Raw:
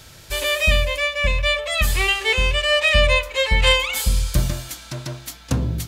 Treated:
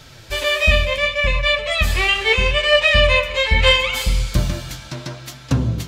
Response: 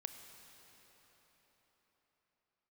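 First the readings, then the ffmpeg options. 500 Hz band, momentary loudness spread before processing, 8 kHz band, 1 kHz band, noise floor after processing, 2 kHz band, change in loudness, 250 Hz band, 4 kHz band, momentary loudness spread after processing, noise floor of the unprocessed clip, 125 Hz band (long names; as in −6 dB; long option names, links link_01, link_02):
+3.5 dB, 15 LU, −3.5 dB, +2.5 dB, −41 dBFS, +2.5 dB, +2.5 dB, +3.0 dB, +2.5 dB, 17 LU, −45 dBFS, +2.0 dB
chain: -filter_complex "[0:a]asplit=2[link_01][link_02];[1:a]atrim=start_sample=2205,afade=type=out:start_time=0.44:duration=0.01,atrim=end_sample=19845,lowpass=6600[link_03];[link_02][link_03]afir=irnorm=-1:irlink=0,volume=7dB[link_04];[link_01][link_04]amix=inputs=2:normalize=0,flanger=delay=6.6:depth=7.6:regen=45:speed=0.73:shape=triangular,volume=-1dB"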